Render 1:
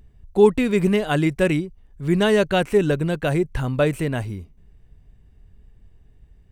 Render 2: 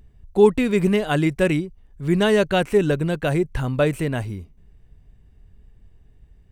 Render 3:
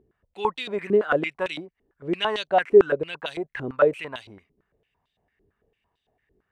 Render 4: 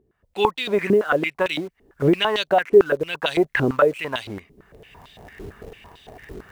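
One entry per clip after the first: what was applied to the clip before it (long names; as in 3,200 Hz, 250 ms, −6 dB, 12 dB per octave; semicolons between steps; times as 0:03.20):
no processing that can be heard
band-pass on a step sequencer 8.9 Hz 370–3,600 Hz; level +7 dB
camcorder AGC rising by 27 dB per second; in parallel at −11.5 dB: bit reduction 6 bits; on the sum: level −1 dB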